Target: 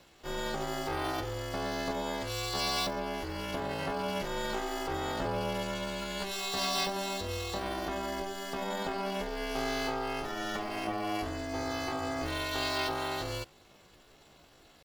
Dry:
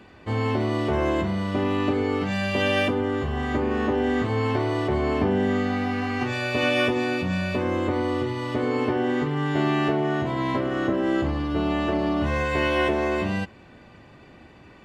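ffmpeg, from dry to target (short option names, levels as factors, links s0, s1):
-af "asetrate=70004,aresample=44100,atempo=0.629961,aemphasis=mode=production:type=50fm,aeval=exprs='val(0)*sin(2*PI*200*n/s)':c=same,volume=0.422"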